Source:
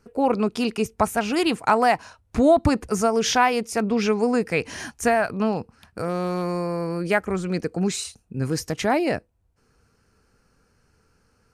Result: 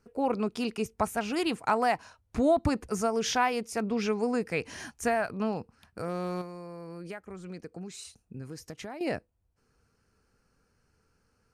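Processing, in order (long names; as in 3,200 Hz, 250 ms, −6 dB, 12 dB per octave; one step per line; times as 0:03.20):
0:06.41–0:09.01: downward compressor 6 to 1, threshold −31 dBFS, peak gain reduction 15 dB
level −7.5 dB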